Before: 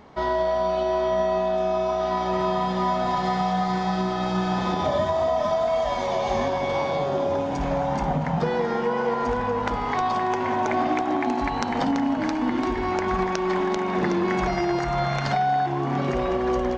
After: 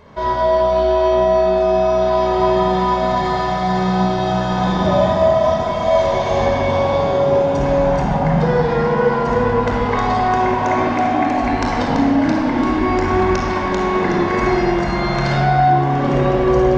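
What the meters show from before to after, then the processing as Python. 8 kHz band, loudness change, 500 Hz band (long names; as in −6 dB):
can't be measured, +8.0 dB, +8.5 dB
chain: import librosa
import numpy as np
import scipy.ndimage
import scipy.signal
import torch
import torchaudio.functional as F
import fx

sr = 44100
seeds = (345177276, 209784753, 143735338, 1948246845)

y = fx.room_shoebox(x, sr, seeds[0], volume_m3=3800.0, walls='mixed', distance_m=5.2)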